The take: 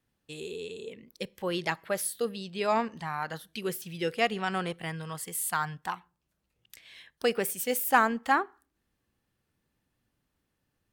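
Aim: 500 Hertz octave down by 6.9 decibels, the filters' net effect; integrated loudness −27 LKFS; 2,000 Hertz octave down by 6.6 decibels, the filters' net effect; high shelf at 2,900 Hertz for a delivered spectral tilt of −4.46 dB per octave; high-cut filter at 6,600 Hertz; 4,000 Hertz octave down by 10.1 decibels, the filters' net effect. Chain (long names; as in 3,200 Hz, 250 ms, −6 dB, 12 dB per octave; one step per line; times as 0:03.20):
low-pass filter 6,600 Hz
parametric band 500 Hz −8 dB
parametric band 2,000 Hz −4.5 dB
high-shelf EQ 2,900 Hz −8 dB
parametric band 4,000 Hz −5.5 dB
level +9 dB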